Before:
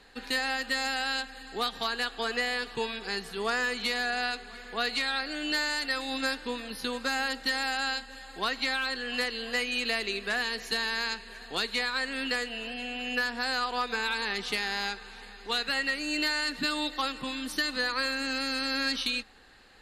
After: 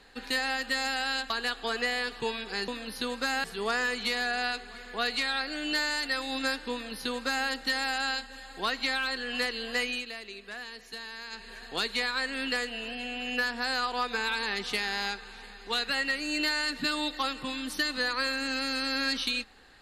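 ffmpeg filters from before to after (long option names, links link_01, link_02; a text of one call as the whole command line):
ffmpeg -i in.wav -filter_complex "[0:a]asplit=6[link_01][link_02][link_03][link_04][link_05][link_06];[link_01]atrim=end=1.302[link_07];[link_02]atrim=start=1.848:end=3.232[link_08];[link_03]atrim=start=6.508:end=7.272[link_09];[link_04]atrim=start=3.228:end=9.85,asetpts=PTS-STARTPTS,afade=type=out:start_time=6.462:duration=0.16:silence=0.281838[link_10];[link_05]atrim=start=9.85:end=11.09,asetpts=PTS-STARTPTS,volume=-11dB[link_11];[link_06]atrim=start=11.09,asetpts=PTS-STARTPTS,afade=type=in:duration=0.16:silence=0.281838[link_12];[link_07][link_08]acrossfade=duration=0.004:curve1=hsin:curve2=hsin[link_13];[link_13][link_09]acrossfade=duration=0.004:curve1=hsin:curve2=hsin[link_14];[link_10][link_11][link_12]concat=n=3:v=0:a=1[link_15];[link_14][link_15]acrossfade=duration=0.004:curve1=hsin:curve2=hsin" out.wav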